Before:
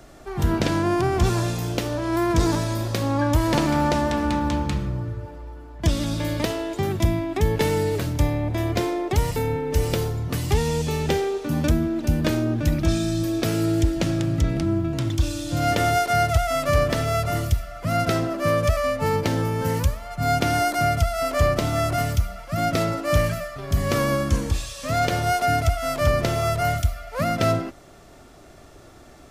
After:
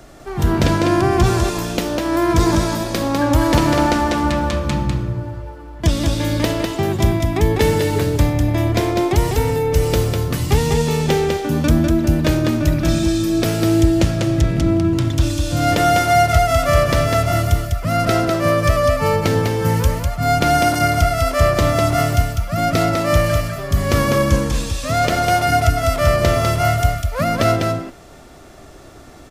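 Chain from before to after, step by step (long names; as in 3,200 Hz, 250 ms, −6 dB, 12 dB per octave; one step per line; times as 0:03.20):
on a send: single-tap delay 200 ms −4 dB
on the sum: level +4.5 dB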